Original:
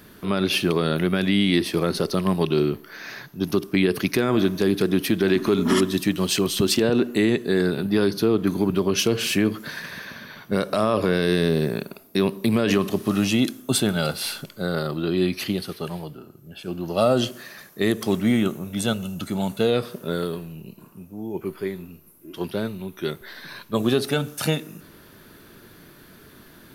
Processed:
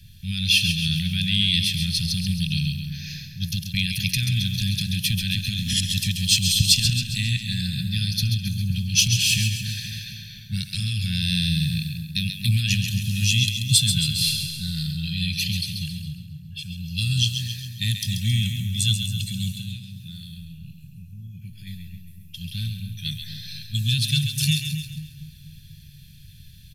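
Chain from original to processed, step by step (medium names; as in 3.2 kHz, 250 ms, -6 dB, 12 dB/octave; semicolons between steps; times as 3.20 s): inverse Chebyshev band-stop 390–1000 Hz, stop band 70 dB; treble shelf 11 kHz -9 dB; comb 1.2 ms, depth 50%; 19.54–21.67 s: compression 6:1, threshold -43 dBFS, peak gain reduction 14.5 dB; two-band feedback delay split 1.5 kHz, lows 243 ms, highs 135 ms, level -7 dB; tape noise reduction on one side only decoder only; trim +7 dB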